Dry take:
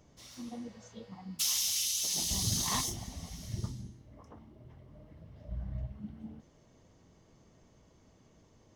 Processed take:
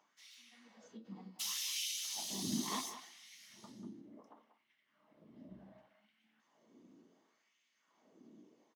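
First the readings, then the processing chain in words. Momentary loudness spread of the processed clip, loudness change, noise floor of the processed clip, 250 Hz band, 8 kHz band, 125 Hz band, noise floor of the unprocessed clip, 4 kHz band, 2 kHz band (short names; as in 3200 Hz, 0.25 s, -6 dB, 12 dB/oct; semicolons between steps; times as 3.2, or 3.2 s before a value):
22 LU, -6.5 dB, -79 dBFS, -3.0 dB, -10.0 dB, -15.5 dB, -64 dBFS, -7.0 dB, -4.0 dB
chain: EQ curve 110 Hz 0 dB, 220 Hz +14 dB, 490 Hz -3 dB, 3300 Hz 0 dB, 5500 Hz -4 dB; LFO high-pass sine 0.69 Hz 300–2400 Hz; phaser 0.25 Hz, delay 1.4 ms, feedback 20%; speakerphone echo 0.19 s, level -10 dB; ending taper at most 180 dB/s; gain -6.5 dB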